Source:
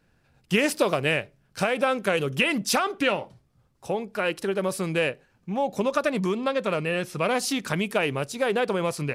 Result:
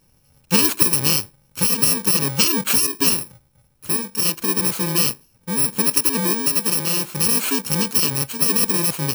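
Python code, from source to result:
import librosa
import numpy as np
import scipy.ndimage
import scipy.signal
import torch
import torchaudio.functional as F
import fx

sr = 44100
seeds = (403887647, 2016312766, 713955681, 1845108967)

y = fx.bit_reversed(x, sr, seeds[0], block=64)
y = fx.highpass(y, sr, hz=160.0, slope=12, at=(5.82, 7.06))
y = F.gain(torch.from_numpy(y), 6.0).numpy()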